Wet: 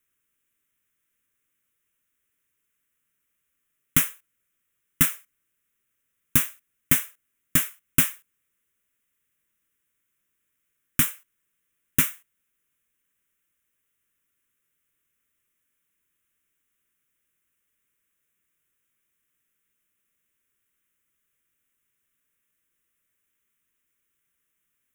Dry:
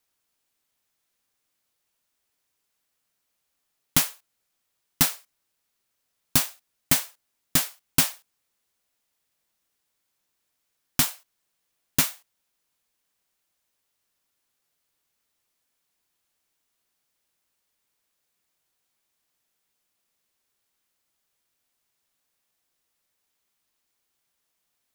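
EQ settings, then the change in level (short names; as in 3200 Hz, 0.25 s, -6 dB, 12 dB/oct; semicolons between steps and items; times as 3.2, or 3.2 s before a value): fixed phaser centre 1900 Hz, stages 4; +2.5 dB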